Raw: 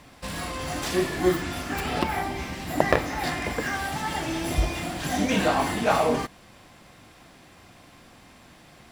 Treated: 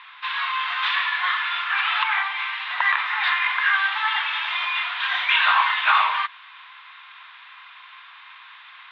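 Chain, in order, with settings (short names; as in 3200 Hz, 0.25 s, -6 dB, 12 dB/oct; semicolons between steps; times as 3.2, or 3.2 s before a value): Chebyshev band-pass 980–3700 Hz, order 4; maximiser +18 dB; gain -6 dB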